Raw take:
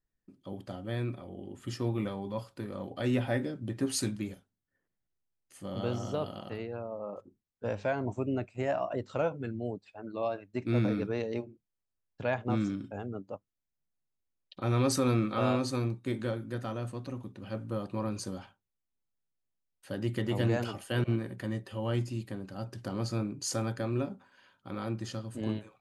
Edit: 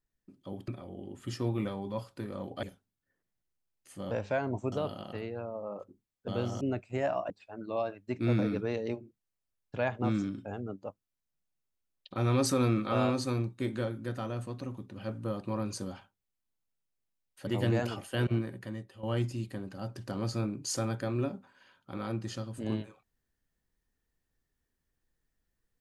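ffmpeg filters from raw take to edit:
-filter_complex "[0:a]asplit=10[a][b][c][d][e][f][g][h][i][j];[a]atrim=end=0.682[k];[b]atrim=start=1.078:end=3.032[l];[c]atrim=start=4.278:end=5.762[m];[d]atrim=start=7.648:end=8.262[n];[e]atrim=start=6.088:end=7.652[o];[f]atrim=start=5.758:end=6.092[p];[g]atrim=start=8.258:end=8.952[q];[h]atrim=start=9.758:end=19.932[r];[i]atrim=start=20.238:end=21.8,asetpts=PTS-STARTPTS,afade=t=out:st=0.872:d=0.69:silence=0.223872[s];[j]atrim=start=21.8,asetpts=PTS-STARTPTS,afade=t=in:d=0.004:c=hsin:silence=0.223872[t];[k][l]acrossfade=d=0.004:c1=hsin:c2=hsin[u];[u][m]acrossfade=d=0.004:c1=hsin:c2=hsin[v];[v][n]acrossfade=d=0.004:c1=hsin:c2=hsin[w];[w][o]acrossfade=d=0.004:c1=hsin:c2=hsin[x];[x][p]acrossfade=d=0.004:c1=hsin:c2=hsin[y];[y][q]acrossfade=d=0.004:c1=hsin:c2=hsin[z];[z][r]acrossfade=d=0.004:c1=hsin:c2=hsin[aa];[s][t]concat=n=2:v=0:a=1[ab];[aa][ab]acrossfade=d=0.004:c1=hsin:c2=hsin"

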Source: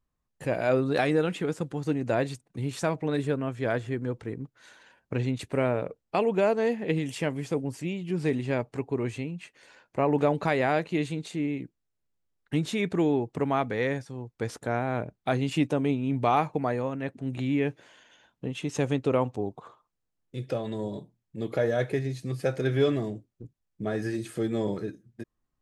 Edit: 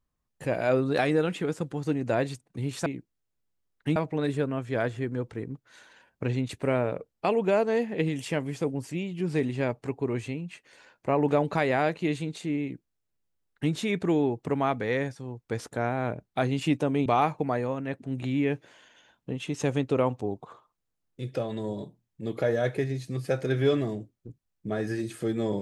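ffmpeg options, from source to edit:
-filter_complex "[0:a]asplit=4[a][b][c][d];[a]atrim=end=2.862[e];[b]atrim=start=11.518:end=12.622[f];[c]atrim=start=2.858:end=15.962[g];[d]atrim=start=16.208[h];[e][f]acrossfade=d=0.004:c1=hsin:c2=hsin[i];[i][g]acrossfade=d=0.004:c1=hsin:c2=hsin[j];[j][h]acrossfade=d=0.004:c1=hsin:c2=hsin"

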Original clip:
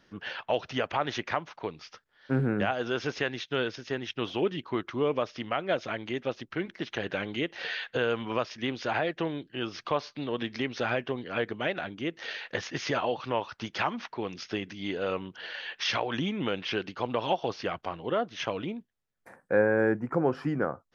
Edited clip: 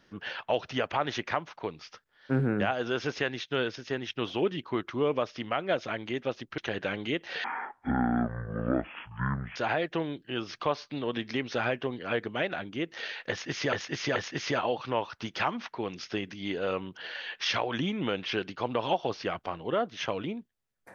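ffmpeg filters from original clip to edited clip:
-filter_complex "[0:a]asplit=6[a][b][c][d][e][f];[a]atrim=end=6.582[g];[b]atrim=start=6.868:end=7.734[h];[c]atrim=start=7.73:end=8.81,asetpts=PTS-STARTPTS,asetrate=22491,aresample=44100,atrim=end_sample=93388,asetpts=PTS-STARTPTS[i];[d]atrim=start=8.806:end=12.982[j];[e]atrim=start=12.548:end=12.982[k];[f]atrim=start=12.548[l];[g][h]acrossfade=d=0.004:c1=hsin:c2=hsin[m];[m][i]acrossfade=d=0.004:c1=hsin:c2=hsin[n];[n][j]acrossfade=d=0.004:c1=hsin:c2=hsin[o];[o][k]acrossfade=d=0.004:c1=hsin:c2=hsin[p];[p][l]acrossfade=d=0.004:c1=hsin:c2=hsin"

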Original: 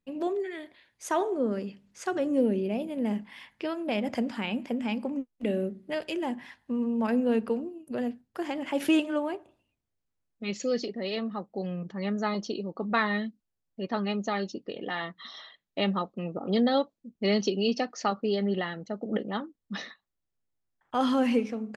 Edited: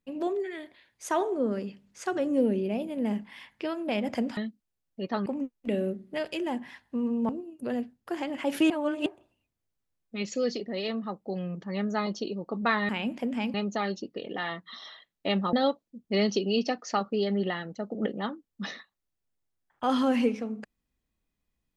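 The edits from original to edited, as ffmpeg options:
-filter_complex "[0:a]asplit=9[a][b][c][d][e][f][g][h][i];[a]atrim=end=4.372[j];[b]atrim=start=13.168:end=14.062[k];[c]atrim=start=5.018:end=7.052[l];[d]atrim=start=7.568:end=8.982[m];[e]atrim=start=8.978:end=9.342,asetpts=PTS-STARTPTS,areverse[n];[f]atrim=start=9.338:end=13.172[o];[g]atrim=start=4.368:end=5.022[p];[h]atrim=start=14.058:end=16.052[q];[i]atrim=start=16.638[r];[j][k]acrossfade=d=0.004:c1=hsin:c2=hsin[s];[s][l]acrossfade=d=0.004:c1=hsin:c2=hsin[t];[t][m]acrossfade=d=0.004:c1=hsin:c2=hsin[u];[u][n]acrossfade=d=0.004:c1=hsin:c2=hsin[v];[v][o]acrossfade=d=0.004:c1=hsin:c2=hsin[w];[w][p]acrossfade=d=0.004:c1=hsin:c2=hsin[x];[x][q]acrossfade=d=0.004:c1=hsin:c2=hsin[y];[y][r]acrossfade=d=0.004:c1=hsin:c2=hsin"

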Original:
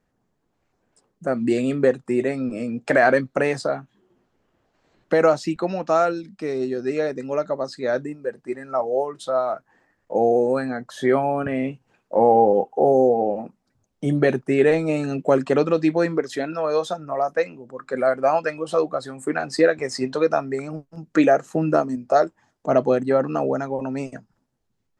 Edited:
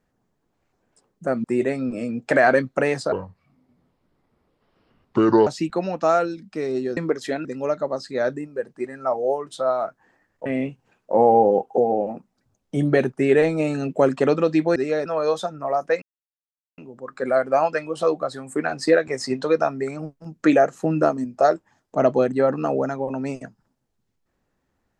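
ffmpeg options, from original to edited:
-filter_complex "[0:a]asplit=11[a][b][c][d][e][f][g][h][i][j][k];[a]atrim=end=1.442[l];[b]atrim=start=2.028:end=3.714[m];[c]atrim=start=3.71:end=5.33,asetpts=PTS-STARTPTS,asetrate=30429,aresample=44100,atrim=end_sample=103539,asetpts=PTS-STARTPTS[n];[d]atrim=start=5.326:end=6.832[o];[e]atrim=start=16.048:end=16.532[p];[f]atrim=start=7.128:end=10.142[q];[g]atrim=start=11.478:end=12.802[r];[h]atrim=start=13.068:end=16.052[s];[i]atrim=start=6.828:end=7.132[t];[j]atrim=start=16.528:end=17.49,asetpts=PTS-STARTPTS,afade=t=out:st=0.958:d=0.004:c=hsin,apad=pad_dur=0.76[u];[k]atrim=start=17.49,asetpts=PTS-STARTPTS,afade=t=in:d=0.004:c=hsin[v];[l][m]acrossfade=d=0.004:c1=hsin:c2=hsin[w];[w][n]acrossfade=d=0.004:c1=hsin:c2=hsin[x];[x][o]acrossfade=d=0.004:c1=hsin:c2=hsin[y];[y][p]acrossfade=d=0.004:c1=hsin:c2=hsin[z];[z][q]acrossfade=d=0.004:c1=hsin:c2=hsin[aa];[aa][r]acrossfade=d=0.004:c1=hsin:c2=hsin[ab];[ab][s]acrossfade=d=0.004:c1=hsin:c2=hsin[ac];[ac][t]acrossfade=d=0.004:c1=hsin:c2=hsin[ad];[u][v]concat=n=2:v=0:a=1[ae];[ad][ae]acrossfade=d=0.004:c1=hsin:c2=hsin"

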